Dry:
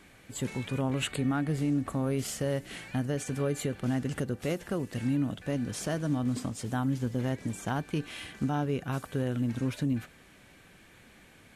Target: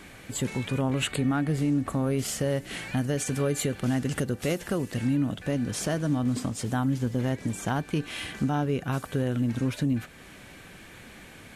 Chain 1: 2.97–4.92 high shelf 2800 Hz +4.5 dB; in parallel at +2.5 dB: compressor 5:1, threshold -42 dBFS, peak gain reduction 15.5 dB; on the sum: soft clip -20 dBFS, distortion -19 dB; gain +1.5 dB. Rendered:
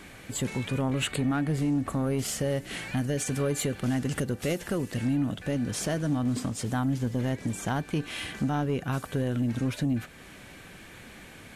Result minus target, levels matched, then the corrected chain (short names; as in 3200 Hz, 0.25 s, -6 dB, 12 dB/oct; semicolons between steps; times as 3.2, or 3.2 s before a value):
soft clip: distortion +15 dB
2.97–4.92 high shelf 2800 Hz +4.5 dB; in parallel at +2.5 dB: compressor 5:1, threshold -42 dBFS, peak gain reduction 15.5 dB; on the sum: soft clip -11.5 dBFS, distortion -34 dB; gain +1.5 dB